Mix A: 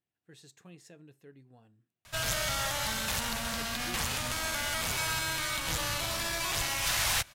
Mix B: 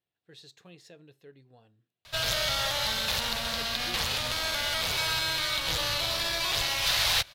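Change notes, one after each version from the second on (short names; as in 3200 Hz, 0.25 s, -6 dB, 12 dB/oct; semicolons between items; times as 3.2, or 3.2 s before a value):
master: add graphic EQ 250/500/4000/8000 Hz -4/+5/+10/-6 dB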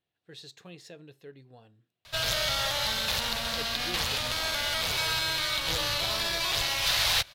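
speech +4.5 dB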